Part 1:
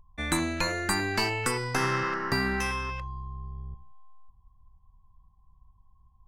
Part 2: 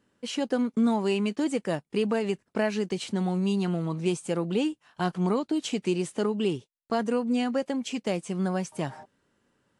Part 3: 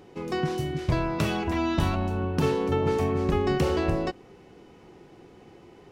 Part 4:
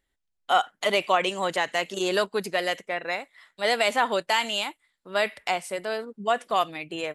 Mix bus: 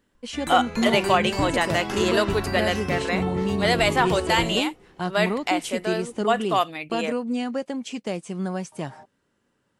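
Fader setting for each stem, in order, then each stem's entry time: −7.0, −0.5, −4.0, +2.0 decibels; 0.15, 0.00, 0.50, 0.00 seconds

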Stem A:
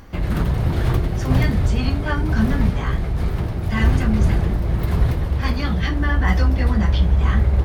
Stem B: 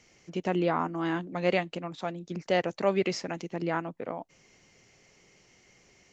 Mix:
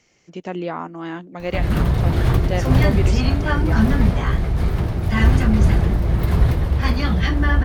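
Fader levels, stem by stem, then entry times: +2.0, 0.0 decibels; 1.40, 0.00 seconds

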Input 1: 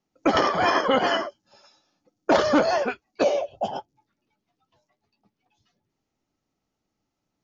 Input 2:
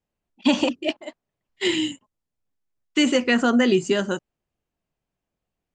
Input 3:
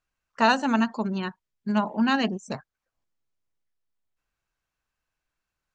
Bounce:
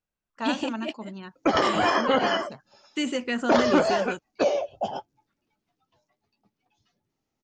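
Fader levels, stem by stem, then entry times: −1.5, −8.5, −10.5 decibels; 1.20, 0.00, 0.00 seconds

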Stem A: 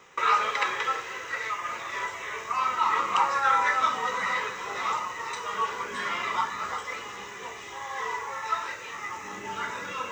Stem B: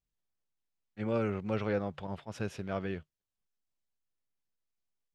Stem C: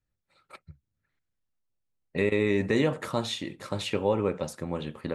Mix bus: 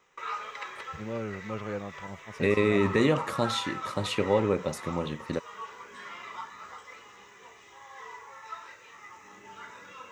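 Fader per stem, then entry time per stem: −12.5, −3.5, +1.0 decibels; 0.00, 0.00, 0.25 seconds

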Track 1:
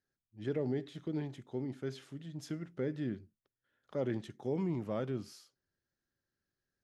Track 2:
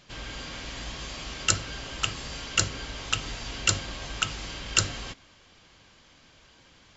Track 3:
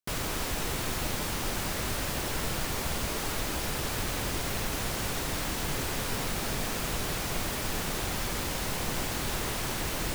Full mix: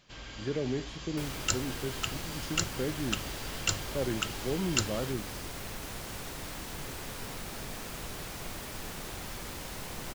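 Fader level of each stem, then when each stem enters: +2.0, −6.5, −8.5 decibels; 0.00, 0.00, 1.10 seconds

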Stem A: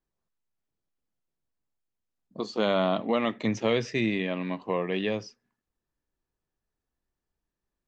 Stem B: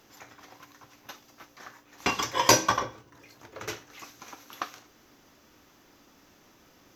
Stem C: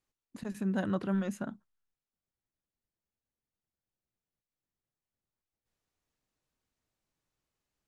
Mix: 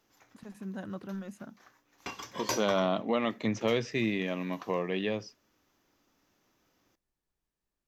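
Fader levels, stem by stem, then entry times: −3.0, −13.5, −8.0 decibels; 0.00, 0.00, 0.00 seconds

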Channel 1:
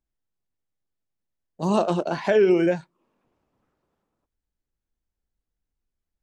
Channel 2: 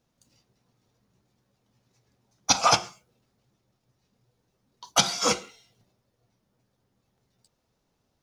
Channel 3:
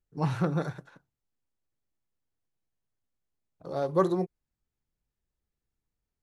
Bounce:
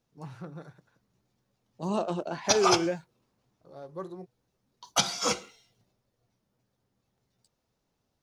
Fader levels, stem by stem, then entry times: −8.0, −4.0, −14.5 decibels; 0.20, 0.00, 0.00 seconds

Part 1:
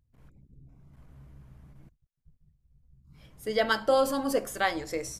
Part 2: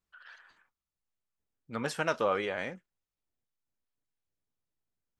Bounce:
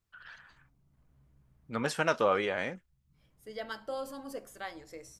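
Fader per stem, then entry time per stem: −14.0, +2.0 decibels; 0.00, 0.00 seconds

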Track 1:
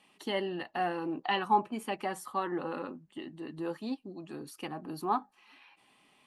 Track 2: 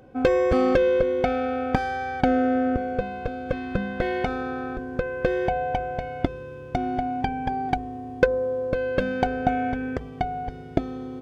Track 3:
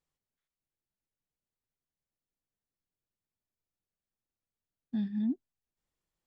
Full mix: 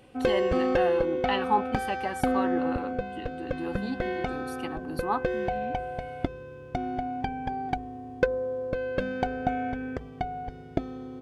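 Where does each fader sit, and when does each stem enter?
+1.5, −5.0, −10.0 decibels; 0.00, 0.00, 0.40 seconds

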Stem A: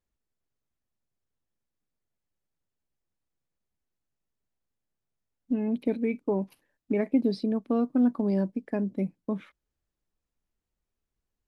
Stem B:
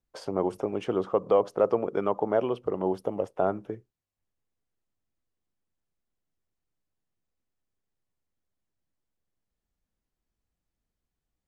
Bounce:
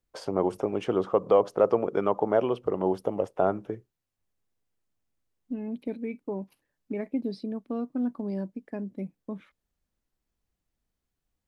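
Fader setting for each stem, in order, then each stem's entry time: −6.0, +1.5 decibels; 0.00, 0.00 seconds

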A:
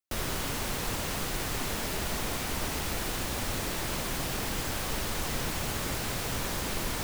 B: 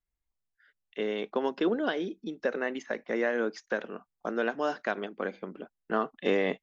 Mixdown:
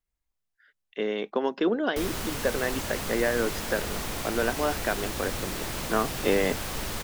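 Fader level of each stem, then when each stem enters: −0.5, +2.5 decibels; 1.85, 0.00 seconds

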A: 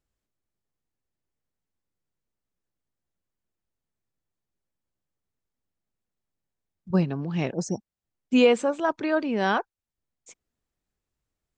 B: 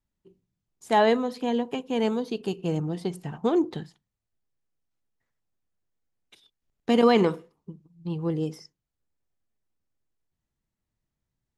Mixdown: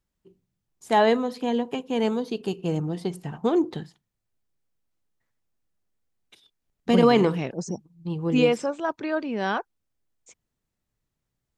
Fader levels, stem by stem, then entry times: −2.5, +1.0 decibels; 0.00, 0.00 seconds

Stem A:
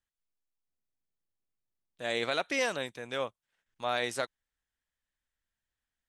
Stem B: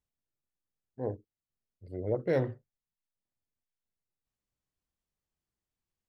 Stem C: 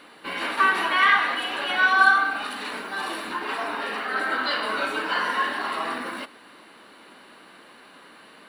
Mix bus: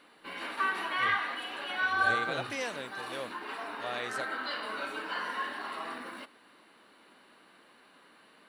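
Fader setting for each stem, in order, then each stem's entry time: −6.0, −12.5, −10.5 decibels; 0.00, 0.00, 0.00 seconds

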